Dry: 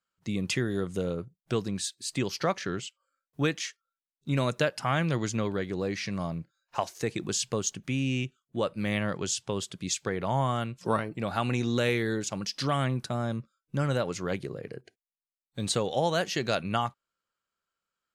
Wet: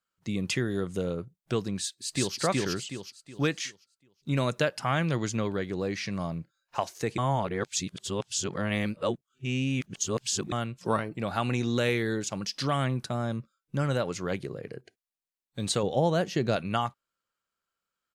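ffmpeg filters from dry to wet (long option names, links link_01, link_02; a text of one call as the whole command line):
ffmpeg -i in.wav -filter_complex "[0:a]asplit=2[link_01][link_02];[link_02]afade=type=in:start_time=1.78:duration=0.01,afade=type=out:start_time=2.38:duration=0.01,aecho=0:1:370|740|1110|1480|1850:1|0.35|0.1225|0.042875|0.0150062[link_03];[link_01][link_03]amix=inputs=2:normalize=0,asettb=1/sr,asplit=3[link_04][link_05][link_06];[link_04]atrim=end=15.834[link_07];[link_05]atrim=start=15.83:end=16.56,asetpts=PTS-STARTPTS,afade=type=in:duration=0.004:curve=qsin,afade=type=out:start_time=0.726:duration=0.004:curve=qsin,tiltshelf=frequency=730:gain=6[link_08];[link_06]atrim=start=16.556[link_09];[link_07][link_08]acrossfade=duration=0.004:curve1=hsin:curve2=qsin[link_10];[link_10][link_09]acrossfade=duration=0.004:curve1=qsin:curve2=hsin,asplit=3[link_11][link_12][link_13];[link_11]atrim=end=7.182[link_14];[link_12]atrim=start=7.178:end=10.522,asetpts=PTS-STARTPTS,areverse[link_15];[link_13]atrim=start=10.518[link_16];[link_14][link_15]acrossfade=duration=0.004:curve1=hsin:curve2=hsin[link_17];[link_17][link_16]acrossfade=duration=0.004:curve1=hsin:curve2=hsin" out.wav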